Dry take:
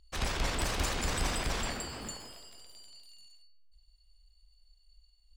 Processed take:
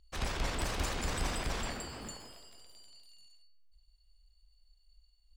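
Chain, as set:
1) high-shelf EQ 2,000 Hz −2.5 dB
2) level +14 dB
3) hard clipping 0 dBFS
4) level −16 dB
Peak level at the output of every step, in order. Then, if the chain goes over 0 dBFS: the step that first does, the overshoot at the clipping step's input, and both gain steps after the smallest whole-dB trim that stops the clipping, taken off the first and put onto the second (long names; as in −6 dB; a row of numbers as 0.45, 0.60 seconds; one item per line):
−19.5, −5.5, −5.5, −21.5 dBFS
no step passes full scale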